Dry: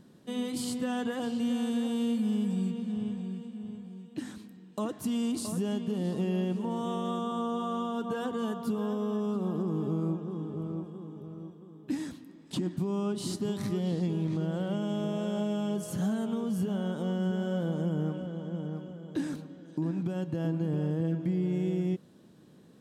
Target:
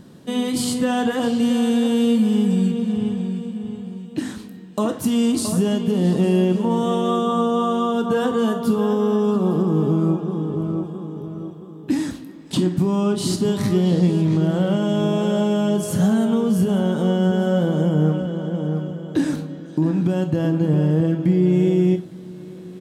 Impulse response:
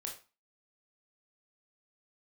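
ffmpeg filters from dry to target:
-filter_complex "[0:a]equalizer=frequency=65:width_type=o:width=1.8:gain=3,aecho=1:1:858:0.0944,asplit=2[link_01][link_02];[1:a]atrim=start_sample=2205[link_03];[link_02][link_03]afir=irnorm=-1:irlink=0,volume=0.5dB[link_04];[link_01][link_04]amix=inputs=2:normalize=0,volume=7dB"

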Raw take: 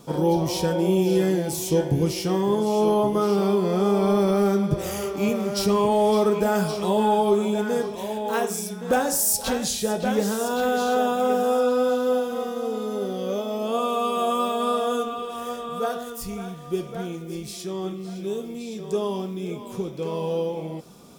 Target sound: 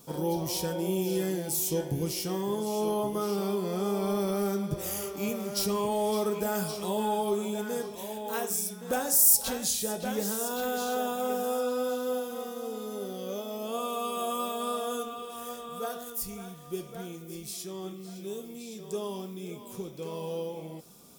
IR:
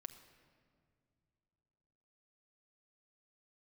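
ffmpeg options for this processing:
-af "aemphasis=mode=production:type=50kf,volume=-9dB"

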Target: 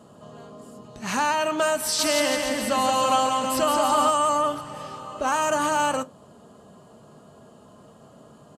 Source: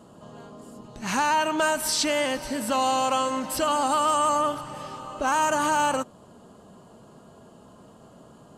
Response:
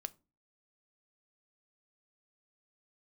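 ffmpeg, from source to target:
-filter_complex "[0:a]highpass=58,asplit=3[link_01][link_02][link_03];[link_01]afade=type=out:start_time=1.98:duration=0.02[link_04];[link_02]aecho=1:1:170|323|460.7|584.6|696.2:0.631|0.398|0.251|0.158|0.1,afade=type=in:start_time=1.98:duration=0.02,afade=type=out:start_time=4.08:duration=0.02[link_05];[link_03]afade=type=in:start_time=4.08:duration=0.02[link_06];[link_04][link_05][link_06]amix=inputs=3:normalize=0[link_07];[1:a]atrim=start_sample=2205,asetrate=66150,aresample=44100[link_08];[link_07][link_08]afir=irnorm=-1:irlink=0,volume=7dB"

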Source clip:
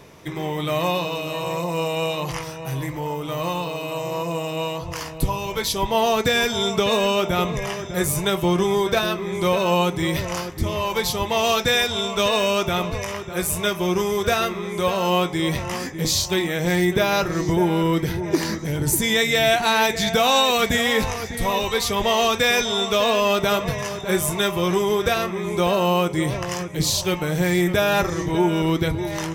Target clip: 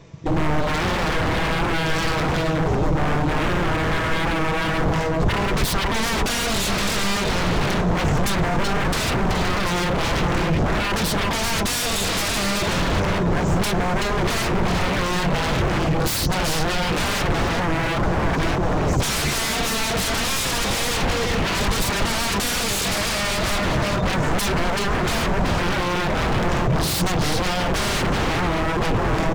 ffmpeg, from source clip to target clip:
ffmpeg -i in.wav -filter_complex "[0:a]aresample=16000,acrusher=bits=3:mode=log:mix=0:aa=0.000001,aresample=44100,afwtdn=0.0355,acompressor=threshold=-22dB:ratio=4,aecho=1:1:6.1:0.39,aecho=1:1:379:0.398,asplit=2[link_01][link_02];[link_02]alimiter=limit=-23dB:level=0:latency=1:release=29,volume=1dB[link_03];[link_01][link_03]amix=inputs=2:normalize=0,aeval=exprs='0.0631*(abs(mod(val(0)/0.0631+3,4)-2)-1)':channel_layout=same,lowshelf=frequency=180:gain=11,volume=5dB" out.wav

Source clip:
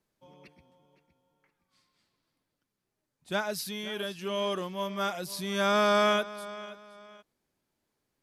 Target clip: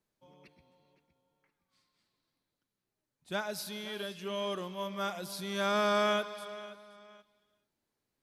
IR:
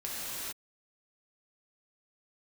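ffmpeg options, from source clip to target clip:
-filter_complex "[0:a]asplit=2[link_01][link_02];[link_02]equalizer=frequency=4000:width_type=o:width=0.3:gain=14[link_03];[1:a]atrim=start_sample=2205[link_04];[link_03][link_04]afir=irnorm=-1:irlink=0,volume=-20.5dB[link_05];[link_01][link_05]amix=inputs=2:normalize=0,volume=-5dB"

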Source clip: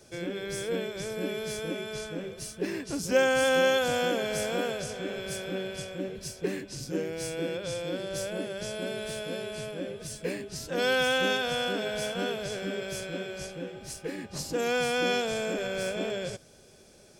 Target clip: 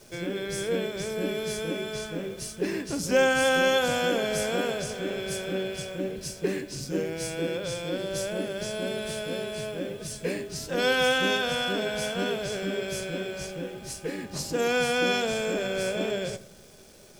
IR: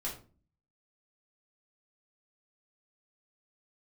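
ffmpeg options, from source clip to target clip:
-filter_complex "[0:a]acontrast=70,acrusher=bits=9:dc=4:mix=0:aa=0.000001,asplit=2[link_01][link_02];[1:a]atrim=start_sample=2205,asetrate=22932,aresample=44100[link_03];[link_02][link_03]afir=irnorm=-1:irlink=0,volume=-17dB[link_04];[link_01][link_04]amix=inputs=2:normalize=0,volume=-5dB"

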